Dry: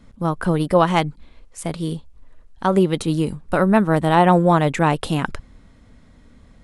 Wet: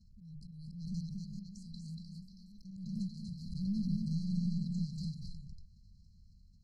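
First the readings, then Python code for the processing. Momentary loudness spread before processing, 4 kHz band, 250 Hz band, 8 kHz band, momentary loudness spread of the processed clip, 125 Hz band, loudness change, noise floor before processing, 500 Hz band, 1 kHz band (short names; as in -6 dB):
14 LU, -21.5 dB, -17.5 dB, under -20 dB, 18 LU, -16.0 dB, -20.5 dB, -50 dBFS, under -40 dB, under -40 dB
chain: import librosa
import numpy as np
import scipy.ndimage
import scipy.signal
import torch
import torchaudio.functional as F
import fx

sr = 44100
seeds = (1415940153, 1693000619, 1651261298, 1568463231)

p1 = fx.tone_stack(x, sr, knobs='5-5-5')
p2 = fx.hum_notches(p1, sr, base_hz=50, count=3)
p3 = fx.level_steps(p2, sr, step_db=17)
p4 = 10.0 ** (-32.0 / 20.0) * np.tanh(p3 / 10.0 ** (-32.0 / 20.0))
p5 = fx.echo_pitch(p4, sr, ms=494, semitones=2, count=3, db_per_echo=-6.0)
p6 = fx.air_absorb(p5, sr, metres=180.0)
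p7 = p6 + fx.echo_single(p6, sr, ms=237, db=-3.5, dry=0)
p8 = fx.auto_swell(p7, sr, attack_ms=194.0)
p9 = fx.brickwall_bandstop(p8, sr, low_hz=220.0, high_hz=4000.0)
p10 = fx.pre_swell(p9, sr, db_per_s=45.0)
y = p10 * 10.0 ** (6.0 / 20.0)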